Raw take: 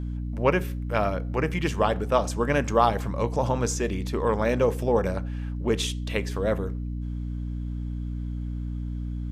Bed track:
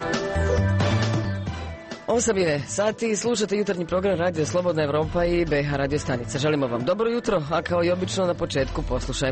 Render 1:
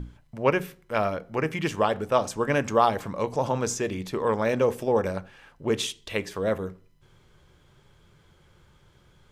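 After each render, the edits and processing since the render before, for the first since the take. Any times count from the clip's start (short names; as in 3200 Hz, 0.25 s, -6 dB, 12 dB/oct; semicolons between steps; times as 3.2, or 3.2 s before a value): notches 60/120/180/240/300 Hz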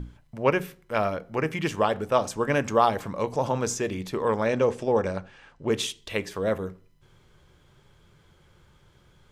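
4.45–5.7 LPF 8300 Hz 24 dB/oct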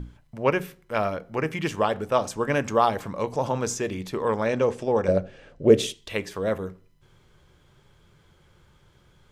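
5.08–5.94 resonant low shelf 730 Hz +7 dB, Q 3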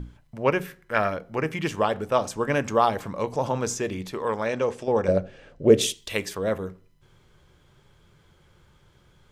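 0.65–1.14 bell 1700 Hz +11 dB 0.52 oct; 4.12–4.88 low shelf 440 Hz -5.5 dB; 5.81–6.35 high shelf 4100 Hz +9.5 dB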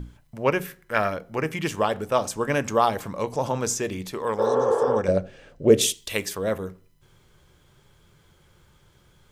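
high shelf 7400 Hz +9.5 dB; 4.42–4.93 spectral repair 330–3400 Hz after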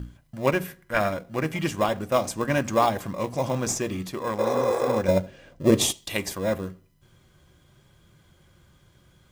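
notch comb 440 Hz; in parallel at -11 dB: sample-rate reducer 1500 Hz, jitter 0%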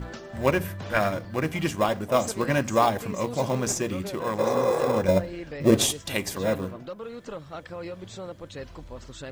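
add bed track -15 dB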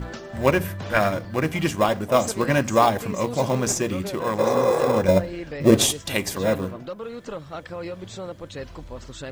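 gain +3.5 dB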